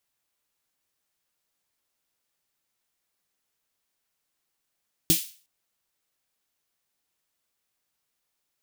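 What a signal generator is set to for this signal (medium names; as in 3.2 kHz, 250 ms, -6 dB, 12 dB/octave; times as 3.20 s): snare drum length 0.36 s, tones 170 Hz, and 320 Hz, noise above 2.6 kHz, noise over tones 1.5 dB, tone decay 0.13 s, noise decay 0.39 s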